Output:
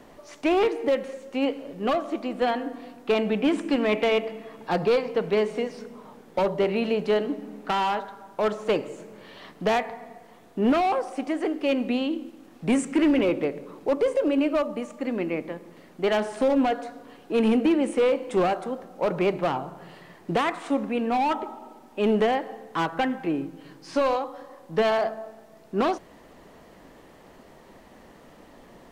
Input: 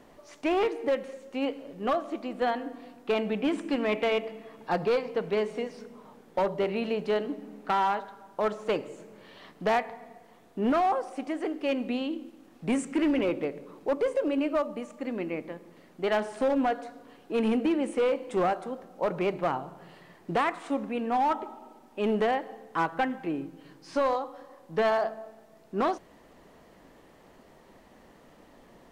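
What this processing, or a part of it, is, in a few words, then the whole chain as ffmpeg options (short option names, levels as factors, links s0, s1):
one-band saturation: -filter_complex "[0:a]acrossover=split=550|2200[s0][s1][s2];[s1]asoftclip=type=tanh:threshold=0.0355[s3];[s0][s3][s2]amix=inputs=3:normalize=0,volume=1.78"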